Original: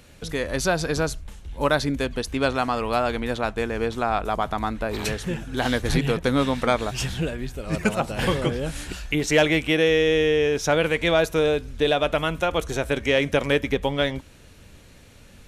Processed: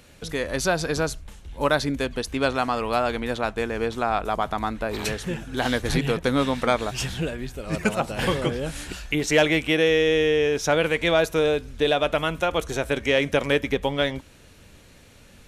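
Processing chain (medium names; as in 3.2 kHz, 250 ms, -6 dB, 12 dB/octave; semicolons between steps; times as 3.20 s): bass shelf 160 Hz -3.5 dB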